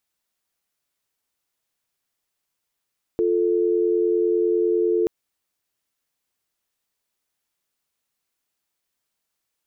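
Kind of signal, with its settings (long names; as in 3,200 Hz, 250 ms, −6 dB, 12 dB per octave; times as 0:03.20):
call progress tone dial tone, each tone −20 dBFS 1.88 s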